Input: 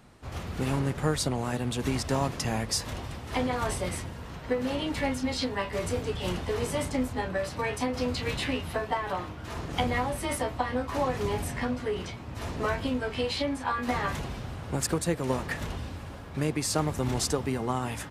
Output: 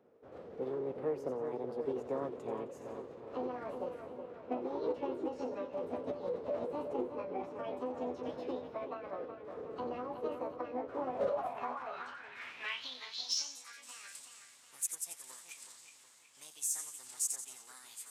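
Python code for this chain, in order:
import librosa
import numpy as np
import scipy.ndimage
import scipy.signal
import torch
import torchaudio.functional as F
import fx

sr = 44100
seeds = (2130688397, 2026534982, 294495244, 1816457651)

p1 = fx.low_shelf(x, sr, hz=130.0, db=-9.5)
p2 = fx.echo_split(p1, sr, split_hz=2900.0, low_ms=370, high_ms=88, feedback_pct=52, wet_db=-8)
p3 = fx.filter_sweep_bandpass(p2, sr, from_hz=340.0, to_hz=6000.0, start_s=11.04, end_s=13.69, q=4.0)
p4 = np.clip(10.0 ** (31.5 / 20.0) * p3, -1.0, 1.0) / 10.0 ** (31.5 / 20.0)
p5 = p3 + F.gain(torch.from_numpy(p4), -11.5).numpy()
y = fx.formant_shift(p5, sr, semitones=5)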